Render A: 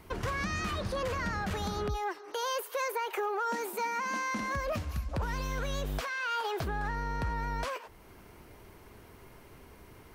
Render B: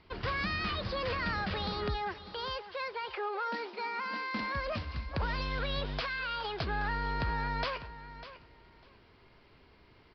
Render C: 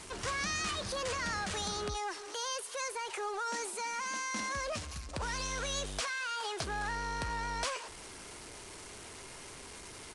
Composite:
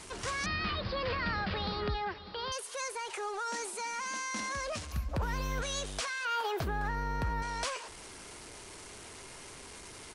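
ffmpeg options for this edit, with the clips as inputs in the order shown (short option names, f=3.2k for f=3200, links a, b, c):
-filter_complex "[0:a]asplit=2[a][b];[2:a]asplit=4[c][d][e][f];[c]atrim=end=0.462[g];[1:a]atrim=start=0.458:end=2.522[h];[d]atrim=start=2.518:end=4.922[i];[a]atrim=start=4.918:end=5.622[j];[e]atrim=start=5.618:end=6.252[k];[b]atrim=start=6.248:end=7.422[l];[f]atrim=start=7.418[m];[g][h]acrossfade=d=0.004:c1=hsin:c2=hsin[n];[n][i]acrossfade=d=0.004:c1=hsin:c2=hsin[o];[o][j]acrossfade=d=0.004:c1=hsin:c2=hsin[p];[p][k]acrossfade=d=0.004:c1=hsin:c2=hsin[q];[q][l]acrossfade=d=0.004:c1=hsin:c2=hsin[r];[r][m]acrossfade=d=0.004:c1=hsin:c2=hsin"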